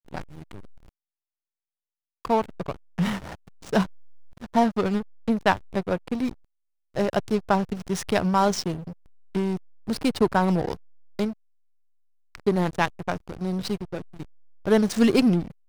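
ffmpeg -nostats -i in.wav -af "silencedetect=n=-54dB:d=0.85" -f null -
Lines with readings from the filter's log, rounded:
silence_start: 0.89
silence_end: 2.25 | silence_duration: 1.36
silence_start: 11.33
silence_end: 12.35 | silence_duration: 1.02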